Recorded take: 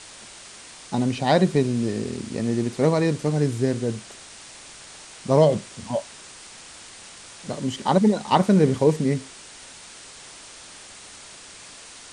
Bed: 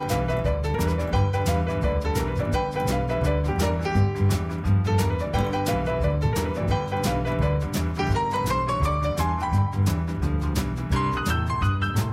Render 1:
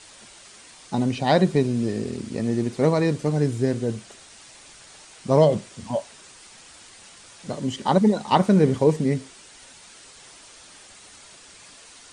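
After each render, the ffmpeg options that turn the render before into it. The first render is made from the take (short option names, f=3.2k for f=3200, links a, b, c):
-af "afftdn=nr=6:nf=-44"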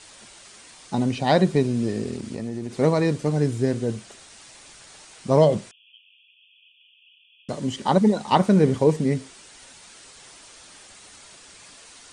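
-filter_complex "[0:a]asettb=1/sr,asplit=3[a][b][c];[a]atrim=end=2.164[d];[b]atrim=start=2.16:end=2.76,asetpts=PTS-STARTPTS,afade=t=in:d=0.004:c=qsin,afade=t=out:st=0.596:d=0.004:c=qsin,acompressor=threshold=-26dB:ratio=6:attack=3.2:release=140:knee=1:detection=peak[e];[c]atrim=start=2.756[f];[d][e]acrossfade=d=0.004:c1=hsin:c2=qsin[g];[g][f]acrossfade=d=0.004:c1=qsin:c2=hsin,asettb=1/sr,asplit=3[h][i][j];[h]atrim=end=5.714[k];[i]atrim=start=5.71:end=7.49,asetpts=PTS-STARTPTS,afade=t=in:d=0.004:c=qsin,afade=t=out:st=1.776:d=0.004:c=qsin,asuperpass=centerf=2900:order=20:qfactor=2.9[l];[j]atrim=start=7.486[m];[k][l]acrossfade=d=0.004:c1=hsin:c2=qsin[n];[n][m]acrossfade=d=0.004:c1=qsin:c2=hsin"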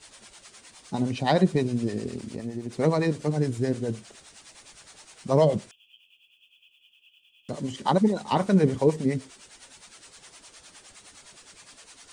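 -filter_complex "[0:a]acrusher=bits=11:mix=0:aa=0.000001,acrossover=split=520[a][b];[a]aeval=exprs='val(0)*(1-0.7/2+0.7/2*cos(2*PI*9.7*n/s))':c=same[c];[b]aeval=exprs='val(0)*(1-0.7/2-0.7/2*cos(2*PI*9.7*n/s))':c=same[d];[c][d]amix=inputs=2:normalize=0"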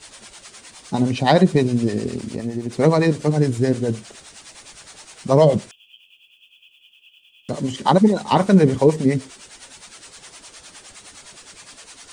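-af "volume=7.5dB,alimiter=limit=-3dB:level=0:latency=1"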